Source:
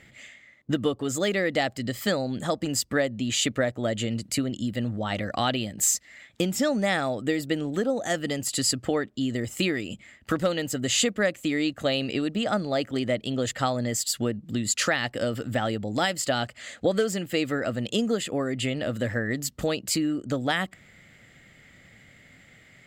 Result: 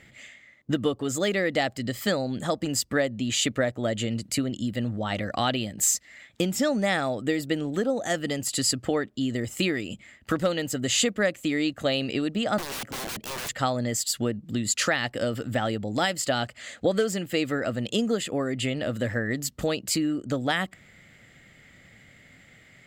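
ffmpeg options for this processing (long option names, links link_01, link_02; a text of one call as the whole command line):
ffmpeg -i in.wav -filter_complex "[0:a]asettb=1/sr,asplit=3[link_01][link_02][link_03];[link_01]atrim=end=12.584[link_04];[link_02]atrim=start=12.58:end=13.49,asetpts=PTS-STARTPTS,afade=type=in:duration=0.004:curve=qsin,afade=type=out:start_time=0.906:duration=0.004:curve=qsin,aeval=exprs='(mod(28.2*val(0)+1,2)-1)/28.2':channel_layout=same[link_05];[link_03]atrim=start=13.486[link_06];[link_04][link_05]acrossfade=duration=0.004:curve1=hsin:curve2=qsin[link_07];[link_07][link_06]acrossfade=duration=0.004:curve1=qsin:curve2=hsin" out.wav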